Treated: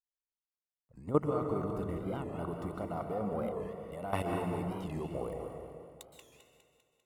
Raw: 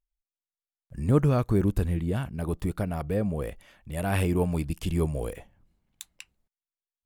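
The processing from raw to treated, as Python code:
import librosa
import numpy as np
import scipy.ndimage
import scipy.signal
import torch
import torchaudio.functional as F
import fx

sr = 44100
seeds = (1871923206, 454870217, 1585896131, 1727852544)

p1 = fx.tilt_eq(x, sr, slope=4.5)
p2 = fx.level_steps(p1, sr, step_db=13)
p3 = scipy.signal.savgol_filter(p2, 65, 4, mode='constant')
p4 = p3 + fx.echo_feedback(p3, sr, ms=198, feedback_pct=59, wet_db=-11.0, dry=0)
p5 = fx.rev_plate(p4, sr, seeds[0], rt60_s=1.9, hf_ratio=0.65, predelay_ms=115, drr_db=3.0)
p6 = fx.record_warp(p5, sr, rpm=45.0, depth_cents=160.0)
y = F.gain(torch.from_numpy(p6), 4.0).numpy()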